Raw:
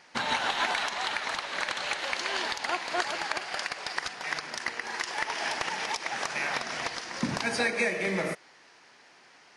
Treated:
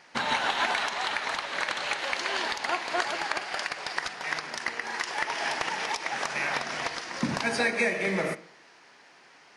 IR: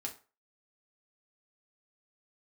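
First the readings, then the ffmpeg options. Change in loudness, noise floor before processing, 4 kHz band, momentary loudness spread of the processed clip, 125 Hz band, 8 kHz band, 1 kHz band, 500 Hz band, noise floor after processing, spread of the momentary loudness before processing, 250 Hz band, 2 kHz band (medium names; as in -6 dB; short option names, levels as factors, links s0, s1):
+1.5 dB, -57 dBFS, +0.5 dB, 6 LU, +1.0 dB, -0.5 dB, +1.5 dB, +1.5 dB, -56 dBFS, 6 LU, +1.5 dB, +1.5 dB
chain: -filter_complex "[0:a]asplit=2[s0][s1];[s1]highpass=120,lowpass=4000[s2];[1:a]atrim=start_sample=2205,asetrate=22491,aresample=44100[s3];[s2][s3]afir=irnorm=-1:irlink=0,volume=0.224[s4];[s0][s4]amix=inputs=2:normalize=0"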